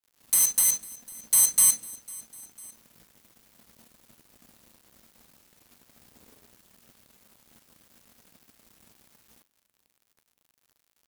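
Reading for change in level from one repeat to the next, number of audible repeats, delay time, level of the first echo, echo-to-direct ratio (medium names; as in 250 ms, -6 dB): -5.0 dB, 2, 500 ms, -22.0 dB, -21.0 dB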